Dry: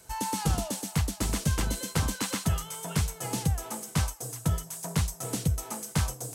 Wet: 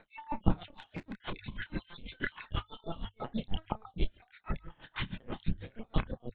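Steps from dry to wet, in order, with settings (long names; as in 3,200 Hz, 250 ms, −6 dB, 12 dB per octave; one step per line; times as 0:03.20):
time-frequency cells dropped at random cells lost 55%
low-shelf EQ 130 Hz −4 dB
linear-prediction vocoder at 8 kHz pitch kept
dynamic equaliser 210 Hz, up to +7 dB, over −51 dBFS, Q 1.6
0:00.71–0:01.21: tube saturation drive 36 dB, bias 0.3
mains-hum notches 50/100 Hz
0:04.61–0:05.15: flutter between parallel walls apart 11.7 metres, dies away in 0.72 s
multi-voice chorus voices 2, 0.42 Hz, delay 29 ms, depth 3.2 ms
tremolo with a sine in dB 6.2 Hz, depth 25 dB
level +7.5 dB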